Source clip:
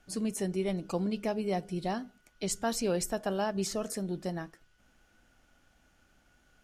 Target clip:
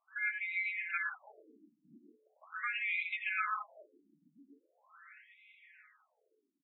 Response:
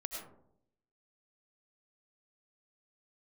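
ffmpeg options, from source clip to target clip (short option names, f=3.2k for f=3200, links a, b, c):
-filter_complex "[0:a]equalizer=f=5.4k:w=1.6:g=-13,aeval=exprs='val(0)*sin(2*PI*1900*n/s)':c=same,aecho=1:1:682|1364|2046|2728:0.1|0.056|0.0314|0.0176[a];[1:a]atrim=start_sample=2205,afade=t=out:st=0.22:d=0.01,atrim=end_sample=10143[b];[a][b]afir=irnorm=-1:irlink=0,afftfilt=real='re*between(b*sr/1024,230*pow(2900/230,0.5+0.5*sin(2*PI*0.41*pts/sr))/1.41,230*pow(2900/230,0.5+0.5*sin(2*PI*0.41*pts/sr))*1.41)':imag='im*between(b*sr/1024,230*pow(2900/230,0.5+0.5*sin(2*PI*0.41*pts/sr))/1.41,230*pow(2900/230,0.5+0.5*sin(2*PI*0.41*pts/sr))*1.41)':win_size=1024:overlap=0.75,volume=2.5dB"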